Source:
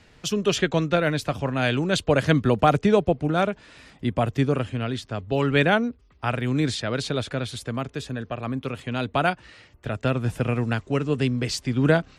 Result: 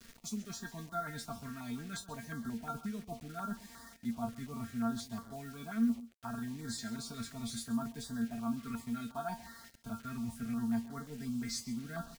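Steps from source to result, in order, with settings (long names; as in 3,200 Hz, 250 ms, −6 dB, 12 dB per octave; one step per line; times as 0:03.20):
mains-hum notches 50/100 Hz
reversed playback
downward compressor 8 to 1, threshold −32 dBFS, peak gain reduction 19 dB
reversed playback
phaser with its sweep stopped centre 1,200 Hz, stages 4
tuned comb filter 230 Hz, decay 0.18 s, harmonics all, mix 100%
bit reduction 11 bits
on a send: single-tap delay 134 ms −16.5 dB
on the sum: notch on a step sequencer 5.6 Hz 830–2,500 Hz
level +12.5 dB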